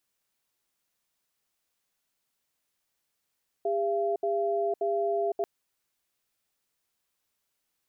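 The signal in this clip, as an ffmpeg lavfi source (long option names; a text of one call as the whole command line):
ffmpeg -f lavfi -i "aevalsrc='0.0422*(sin(2*PI*403*t)+sin(2*PI*680*t))*clip(min(mod(t,0.58),0.51-mod(t,0.58))/0.005,0,1)':duration=1.79:sample_rate=44100" out.wav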